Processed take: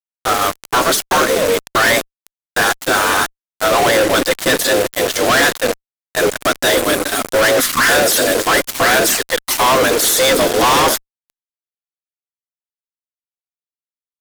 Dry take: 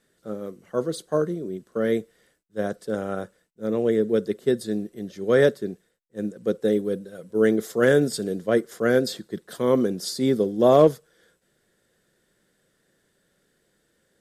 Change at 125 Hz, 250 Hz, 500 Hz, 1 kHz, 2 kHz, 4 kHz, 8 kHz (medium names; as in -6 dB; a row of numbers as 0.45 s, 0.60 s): +1.5 dB, +2.5 dB, +5.5 dB, +17.5 dB, +18.5 dB, +21.0 dB, +23.5 dB